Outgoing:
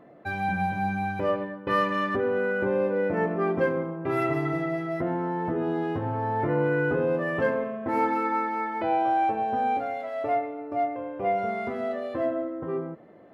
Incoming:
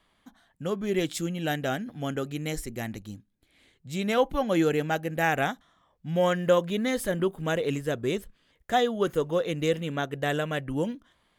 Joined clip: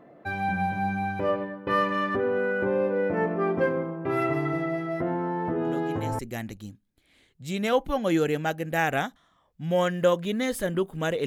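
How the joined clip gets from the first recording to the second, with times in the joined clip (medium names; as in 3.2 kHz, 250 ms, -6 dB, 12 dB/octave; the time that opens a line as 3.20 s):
outgoing
5.65 s: add incoming from 2.10 s 0.54 s -9 dB
6.19 s: go over to incoming from 2.64 s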